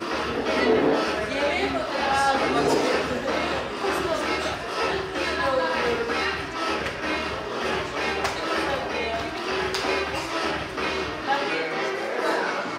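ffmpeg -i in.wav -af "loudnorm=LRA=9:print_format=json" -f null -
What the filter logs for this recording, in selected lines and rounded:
"input_i" : "-25.1",
"input_tp" : "-8.9",
"input_lra" : "2.4",
"input_thresh" : "-35.1",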